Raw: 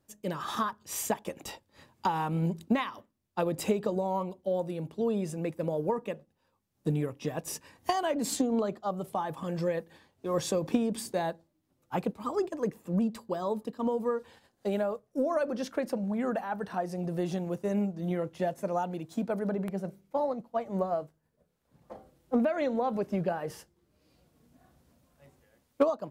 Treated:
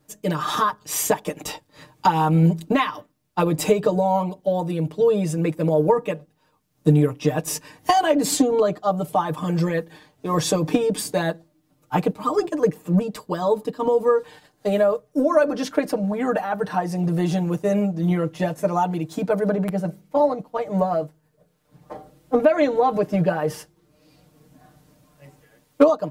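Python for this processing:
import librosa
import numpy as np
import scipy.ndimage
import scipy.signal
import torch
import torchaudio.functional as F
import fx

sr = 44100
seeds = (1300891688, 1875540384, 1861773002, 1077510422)

y = x + 0.89 * np.pad(x, (int(6.6 * sr / 1000.0), 0))[:len(x)]
y = y * 10.0 ** (8.0 / 20.0)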